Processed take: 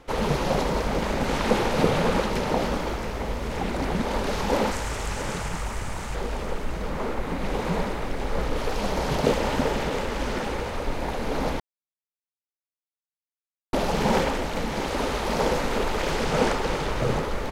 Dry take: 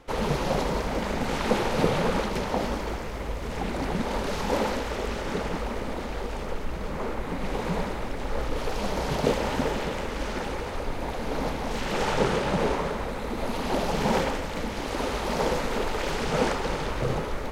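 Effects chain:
0:04.71–0:06.15: octave-band graphic EQ 125/250/500/4,000/8,000 Hz +6/−10/−8/−4/+10 dB
single-tap delay 675 ms −10.5 dB
0:11.60–0:13.73: silence
level +2 dB

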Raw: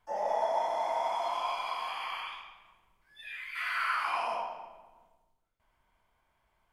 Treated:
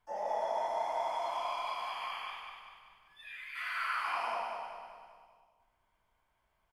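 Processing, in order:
repeating echo 195 ms, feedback 50%, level −5.5 dB
level −4.5 dB

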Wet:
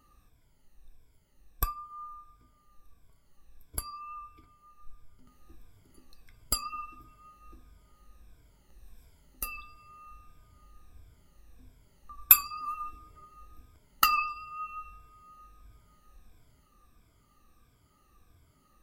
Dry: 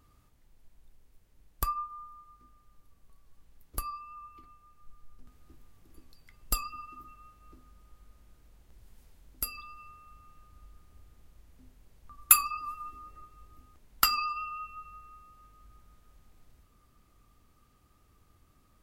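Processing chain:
rippled gain that drifts along the octave scale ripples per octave 1.7, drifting −1.5 Hz, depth 14 dB
level −1.5 dB

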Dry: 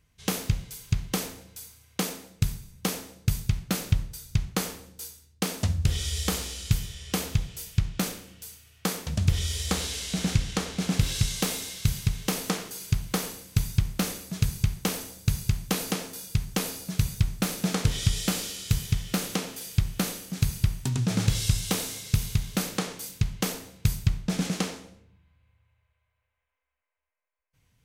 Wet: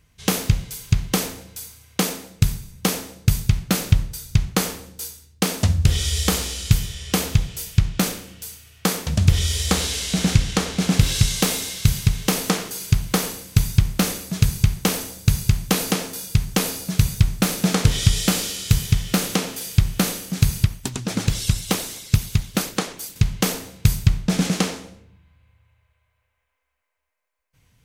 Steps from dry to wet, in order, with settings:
0:20.64–0:23.16: harmonic and percussive parts rebalanced harmonic −15 dB
level +7.5 dB

